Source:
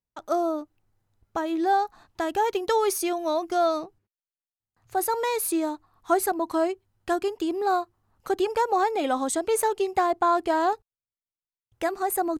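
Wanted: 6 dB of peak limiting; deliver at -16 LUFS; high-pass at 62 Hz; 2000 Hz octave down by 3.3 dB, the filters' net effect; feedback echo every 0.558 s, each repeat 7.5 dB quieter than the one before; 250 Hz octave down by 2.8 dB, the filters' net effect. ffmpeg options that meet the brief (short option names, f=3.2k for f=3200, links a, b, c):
-af "highpass=62,equalizer=f=250:t=o:g=-4.5,equalizer=f=2k:t=o:g=-4.5,alimiter=limit=-18.5dB:level=0:latency=1,aecho=1:1:558|1116|1674|2232|2790:0.422|0.177|0.0744|0.0312|0.0131,volume=12.5dB"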